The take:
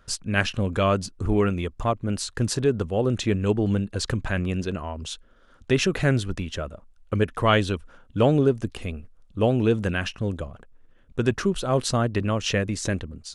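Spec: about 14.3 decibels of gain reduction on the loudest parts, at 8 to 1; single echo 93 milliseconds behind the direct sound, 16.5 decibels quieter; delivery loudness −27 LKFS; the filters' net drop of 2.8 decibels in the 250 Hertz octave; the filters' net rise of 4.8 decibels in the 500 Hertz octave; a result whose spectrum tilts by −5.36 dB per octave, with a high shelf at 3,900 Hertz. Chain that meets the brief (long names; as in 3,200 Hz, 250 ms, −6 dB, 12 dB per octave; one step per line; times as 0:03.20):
parametric band 250 Hz −6.5 dB
parametric band 500 Hz +8 dB
high-shelf EQ 3,900 Hz −5.5 dB
downward compressor 8 to 1, threshold −27 dBFS
single-tap delay 93 ms −16.5 dB
level +6 dB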